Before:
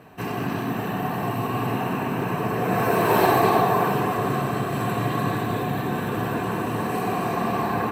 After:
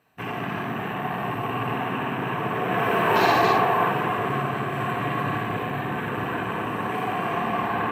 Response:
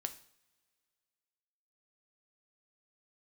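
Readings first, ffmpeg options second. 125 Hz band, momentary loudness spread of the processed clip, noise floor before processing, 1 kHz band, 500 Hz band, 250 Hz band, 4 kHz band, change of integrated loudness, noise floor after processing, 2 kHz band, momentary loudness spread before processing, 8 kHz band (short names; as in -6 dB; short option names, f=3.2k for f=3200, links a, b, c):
-4.0 dB, 9 LU, -28 dBFS, 0.0 dB, -2.5 dB, -4.0 dB, +2.0 dB, -1.0 dB, -30 dBFS, +2.5 dB, 8 LU, -7.5 dB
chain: -filter_complex "[0:a]tiltshelf=f=1.1k:g=-5.5,afwtdn=0.0251,asplit=2[a][b];[1:a]atrim=start_sample=2205,adelay=57[c];[b][c]afir=irnorm=-1:irlink=0,volume=-4dB[d];[a][d]amix=inputs=2:normalize=0"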